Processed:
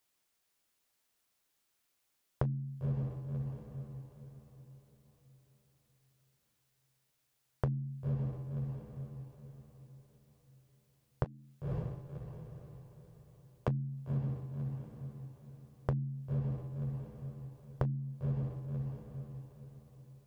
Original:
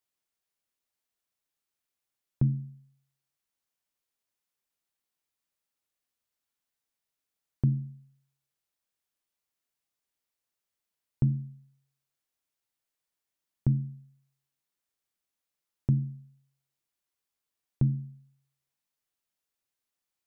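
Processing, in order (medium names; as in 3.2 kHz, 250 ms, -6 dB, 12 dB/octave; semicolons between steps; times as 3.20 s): wavefolder -19 dBFS; 11.24–13.68 s: high-pass 510 Hz 12 dB/octave; echo that smears into a reverb 537 ms, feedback 42%, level -9.5 dB; compression 16:1, threshold -38 dBFS, peak gain reduction 16.5 dB; trim +8 dB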